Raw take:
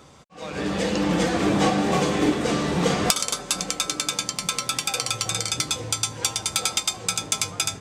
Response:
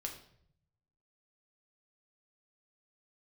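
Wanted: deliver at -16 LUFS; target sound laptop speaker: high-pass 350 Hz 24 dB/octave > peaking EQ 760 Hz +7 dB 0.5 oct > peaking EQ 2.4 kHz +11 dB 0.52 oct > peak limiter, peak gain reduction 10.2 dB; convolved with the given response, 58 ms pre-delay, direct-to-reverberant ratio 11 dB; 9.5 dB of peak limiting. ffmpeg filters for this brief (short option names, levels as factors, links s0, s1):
-filter_complex "[0:a]alimiter=limit=0.224:level=0:latency=1,asplit=2[s0][s1];[1:a]atrim=start_sample=2205,adelay=58[s2];[s1][s2]afir=irnorm=-1:irlink=0,volume=0.316[s3];[s0][s3]amix=inputs=2:normalize=0,highpass=f=350:w=0.5412,highpass=f=350:w=1.3066,equalizer=f=760:t=o:w=0.5:g=7,equalizer=f=2400:t=o:w=0.52:g=11,volume=4.22,alimiter=limit=0.473:level=0:latency=1"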